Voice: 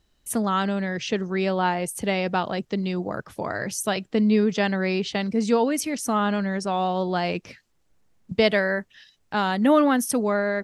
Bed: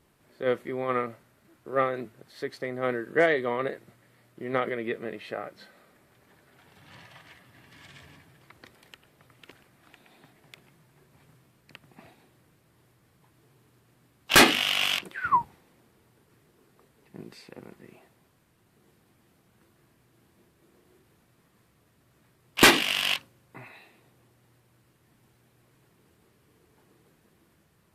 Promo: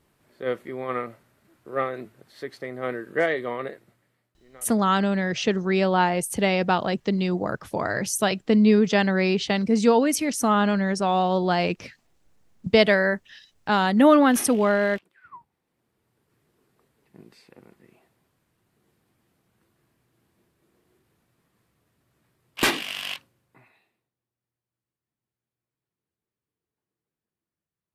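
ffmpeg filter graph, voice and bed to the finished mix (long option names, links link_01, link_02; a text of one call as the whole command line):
ffmpeg -i stem1.wav -i stem2.wav -filter_complex "[0:a]adelay=4350,volume=2.5dB[link_01];[1:a]volume=16dB,afade=type=out:start_time=3.5:duration=0.87:silence=0.0841395,afade=type=in:start_time=15.5:duration=1.04:silence=0.141254,afade=type=out:start_time=23.06:duration=1.05:silence=0.0794328[link_02];[link_01][link_02]amix=inputs=2:normalize=0" out.wav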